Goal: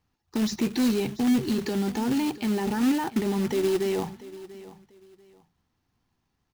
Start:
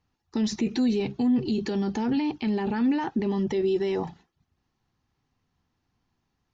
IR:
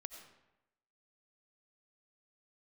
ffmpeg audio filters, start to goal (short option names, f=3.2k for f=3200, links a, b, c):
-af "acrusher=bits=3:mode=log:mix=0:aa=0.000001,aecho=1:1:690|1380:0.133|0.0333"